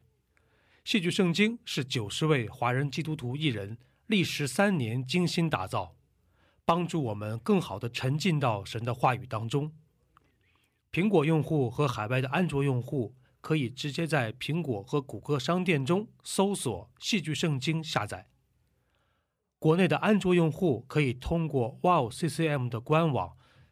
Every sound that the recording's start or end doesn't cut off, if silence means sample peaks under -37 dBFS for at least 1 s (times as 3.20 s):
10.94–18.19 s